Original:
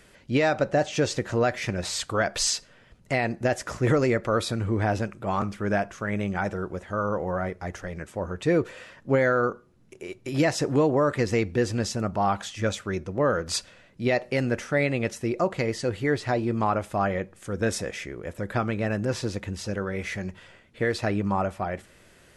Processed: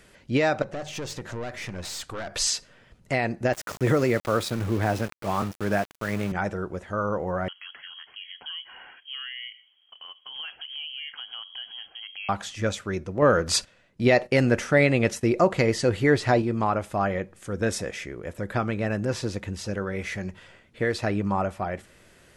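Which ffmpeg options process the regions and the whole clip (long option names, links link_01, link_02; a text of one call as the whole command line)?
ffmpeg -i in.wav -filter_complex "[0:a]asettb=1/sr,asplit=3[link_01][link_02][link_03];[link_01]atrim=end=0.624[link_04];[link_02]atrim=start=0.62:end=2.33,asetpts=PTS-STARTPTS,afade=type=in:duration=0.004:curve=qsin,afade=type=out:start_time=1.706:duration=0.004:curve=qsin,bandreject=frequency=50:width_type=h:width=6,bandreject=frequency=100:width_type=h:width=6,bandreject=frequency=150:width_type=h:width=6,acompressor=threshold=-28dB:ratio=2:attack=3.2:release=140:knee=1:detection=peak,aeval=exprs='(tanh(28.2*val(0)+0.45)-tanh(0.45))/28.2':channel_layout=same[link_05];[link_03]atrim=start=2.326[link_06];[link_04][link_05]acrossfade=duration=0.004:curve1=hsin:curve2=qsin[link_07];[link_07][link_06]acrossfade=duration=0.004:curve1=qsin:curve2=hsin,asettb=1/sr,asplit=3[link_08][link_09][link_10];[link_08]atrim=end=3.534[link_11];[link_09]atrim=start=3.53:end=6.32,asetpts=PTS-STARTPTS,afade=type=in:duration=0.004:curve=qsin,afade=type=out:start_time=2.786:duration=0.004:curve=qsin,highpass=frequency=73:width=0.5412,highpass=frequency=73:width=1.3066,aeval=exprs='val(0)*gte(abs(val(0)),0.02)':channel_layout=same[link_12];[link_10]atrim=start=6.316[link_13];[link_11][link_12]acrossfade=duration=0.004:curve1=hsin:curve2=qsin[link_14];[link_14][link_13]acrossfade=duration=0.004:curve1=qsin:curve2=hsin,asettb=1/sr,asplit=3[link_15][link_16][link_17];[link_15]atrim=end=7.484[link_18];[link_16]atrim=start=7.48:end=12.29,asetpts=PTS-STARTPTS,afade=type=in:duration=0.004:curve=qsin,afade=type=out:start_time=4.806:duration=0.004:curve=qsin,highpass=130,acompressor=threshold=-41dB:ratio=2.5:attack=3.2:release=140:knee=1:detection=peak,lowpass=frequency=2900:width_type=q:width=0.5098,lowpass=frequency=2900:width_type=q:width=0.6013,lowpass=frequency=2900:width_type=q:width=0.9,lowpass=frequency=2900:width_type=q:width=2.563,afreqshift=-3400[link_19];[link_17]atrim=start=12.286[link_20];[link_18][link_19]acrossfade=duration=0.004:curve1=hsin:curve2=qsin[link_21];[link_21][link_20]acrossfade=duration=0.004:curve1=qsin:curve2=hsin,asettb=1/sr,asplit=3[link_22][link_23][link_24];[link_22]atrim=end=13.224[link_25];[link_23]atrim=start=13.22:end=16.42,asetpts=PTS-STARTPTS,afade=type=in:duration=0.004:curve=qsin,afade=type=out:start_time=3.196:duration=0.004:curve=qsin,acontrast=22,agate=range=-12dB:threshold=-40dB:ratio=16:release=100:detection=peak[link_26];[link_24]atrim=start=16.416[link_27];[link_25][link_26]acrossfade=duration=0.004:curve1=hsin:curve2=qsin[link_28];[link_28][link_27]acrossfade=duration=0.004:curve1=qsin:curve2=hsin" out.wav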